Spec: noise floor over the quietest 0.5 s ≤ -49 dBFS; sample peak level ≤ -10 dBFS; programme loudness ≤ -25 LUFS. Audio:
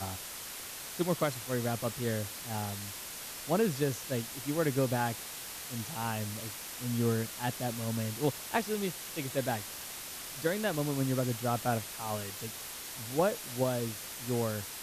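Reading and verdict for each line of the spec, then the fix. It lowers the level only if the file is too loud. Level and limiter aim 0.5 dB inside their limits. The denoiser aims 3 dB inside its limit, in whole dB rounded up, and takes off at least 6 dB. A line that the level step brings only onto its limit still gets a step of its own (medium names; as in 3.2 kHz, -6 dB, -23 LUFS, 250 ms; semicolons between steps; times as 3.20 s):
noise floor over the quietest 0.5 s -43 dBFS: fail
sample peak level -16.0 dBFS: pass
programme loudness -34.0 LUFS: pass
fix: noise reduction 9 dB, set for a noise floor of -43 dBFS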